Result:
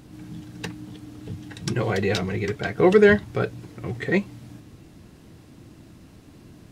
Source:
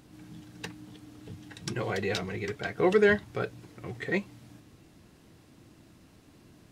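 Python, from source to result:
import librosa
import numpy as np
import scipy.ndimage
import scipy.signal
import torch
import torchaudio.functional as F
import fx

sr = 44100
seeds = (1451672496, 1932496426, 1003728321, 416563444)

y = fx.low_shelf(x, sr, hz=350.0, db=5.5)
y = y * 10.0 ** (5.0 / 20.0)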